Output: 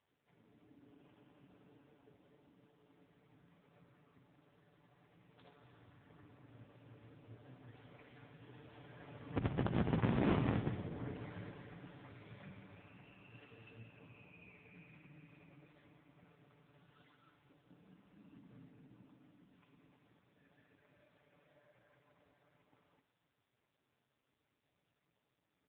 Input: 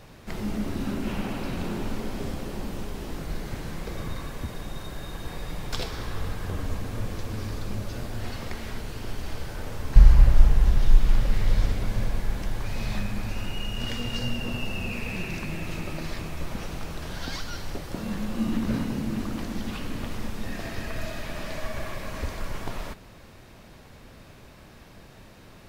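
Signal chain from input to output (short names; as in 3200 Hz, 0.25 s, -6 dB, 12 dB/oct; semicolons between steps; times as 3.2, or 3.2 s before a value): Doppler pass-by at 10.28, 21 m/s, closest 5 m; treble ducked by the level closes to 350 Hz, closed at -21 dBFS; notches 50/100/150/200/250/300/350/400 Hz; comb 6.9 ms, depth 76%; in parallel at -6.5 dB: wrapped overs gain 15 dB; on the sum: air absorption 83 m; resonator 270 Hz, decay 0.56 s, harmonics odd, mix 40%; thinning echo 62 ms, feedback 82%, high-pass 290 Hz, level -12 dB; on a send at -17.5 dB: reverb RT60 2.5 s, pre-delay 42 ms; on the sum: gain +1 dB; AMR-NB 5.9 kbps 8000 Hz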